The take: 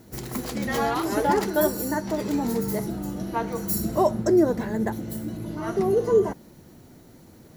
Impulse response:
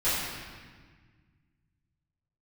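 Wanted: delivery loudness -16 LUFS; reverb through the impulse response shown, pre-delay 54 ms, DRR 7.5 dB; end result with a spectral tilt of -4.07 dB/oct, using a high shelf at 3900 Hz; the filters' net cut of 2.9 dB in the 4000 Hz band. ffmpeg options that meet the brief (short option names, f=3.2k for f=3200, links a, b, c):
-filter_complex "[0:a]highshelf=f=3.9k:g=5.5,equalizer=f=4k:t=o:g=-8,asplit=2[a][b];[1:a]atrim=start_sample=2205,adelay=54[c];[b][c]afir=irnorm=-1:irlink=0,volume=-20dB[d];[a][d]amix=inputs=2:normalize=0,volume=8dB"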